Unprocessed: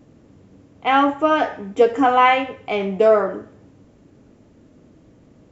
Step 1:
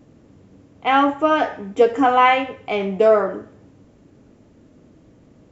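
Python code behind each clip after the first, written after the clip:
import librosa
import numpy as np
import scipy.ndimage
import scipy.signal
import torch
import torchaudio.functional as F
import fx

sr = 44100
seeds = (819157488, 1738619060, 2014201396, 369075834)

y = x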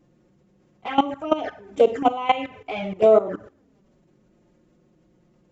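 y = fx.room_flutter(x, sr, wall_m=9.4, rt60_s=0.31)
y = fx.env_flanger(y, sr, rest_ms=5.9, full_db=-12.0)
y = fx.level_steps(y, sr, step_db=16)
y = F.gain(torch.from_numpy(y), 3.5).numpy()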